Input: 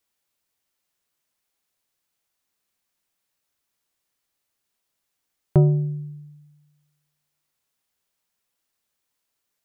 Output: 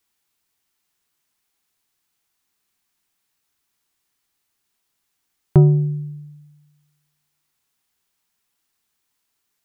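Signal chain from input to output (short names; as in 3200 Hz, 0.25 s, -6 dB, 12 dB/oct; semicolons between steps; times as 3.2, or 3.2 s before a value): bell 560 Hz -12.5 dB 0.25 oct; gain +4.5 dB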